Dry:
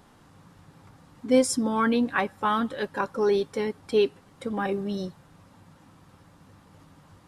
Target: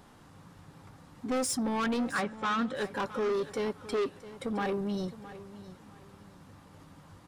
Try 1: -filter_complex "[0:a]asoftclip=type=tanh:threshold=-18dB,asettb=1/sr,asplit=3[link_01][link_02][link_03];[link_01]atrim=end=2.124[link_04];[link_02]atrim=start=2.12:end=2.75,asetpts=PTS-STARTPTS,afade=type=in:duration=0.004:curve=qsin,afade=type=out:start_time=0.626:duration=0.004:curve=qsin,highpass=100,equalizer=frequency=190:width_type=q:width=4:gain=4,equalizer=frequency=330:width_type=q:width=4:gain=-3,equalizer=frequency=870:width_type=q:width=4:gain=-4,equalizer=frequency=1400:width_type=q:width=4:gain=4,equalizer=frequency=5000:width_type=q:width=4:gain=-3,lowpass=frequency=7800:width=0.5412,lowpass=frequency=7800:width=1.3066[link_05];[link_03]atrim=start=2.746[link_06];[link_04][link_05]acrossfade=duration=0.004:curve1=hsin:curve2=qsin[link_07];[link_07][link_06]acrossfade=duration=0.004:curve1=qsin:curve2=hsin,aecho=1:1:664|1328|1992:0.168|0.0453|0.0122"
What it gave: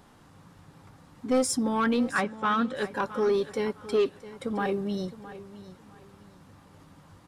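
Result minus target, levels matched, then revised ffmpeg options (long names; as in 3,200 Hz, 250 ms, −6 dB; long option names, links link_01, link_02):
soft clipping: distortion −7 dB
-filter_complex "[0:a]asoftclip=type=tanh:threshold=-27dB,asettb=1/sr,asplit=3[link_01][link_02][link_03];[link_01]atrim=end=2.124[link_04];[link_02]atrim=start=2.12:end=2.75,asetpts=PTS-STARTPTS,afade=type=in:duration=0.004:curve=qsin,afade=type=out:start_time=0.626:duration=0.004:curve=qsin,highpass=100,equalizer=frequency=190:width_type=q:width=4:gain=4,equalizer=frequency=330:width_type=q:width=4:gain=-3,equalizer=frequency=870:width_type=q:width=4:gain=-4,equalizer=frequency=1400:width_type=q:width=4:gain=4,equalizer=frequency=5000:width_type=q:width=4:gain=-3,lowpass=frequency=7800:width=0.5412,lowpass=frequency=7800:width=1.3066[link_05];[link_03]atrim=start=2.746[link_06];[link_04][link_05]acrossfade=duration=0.004:curve1=hsin:curve2=qsin[link_07];[link_07][link_06]acrossfade=duration=0.004:curve1=qsin:curve2=hsin,aecho=1:1:664|1328|1992:0.168|0.0453|0.0122"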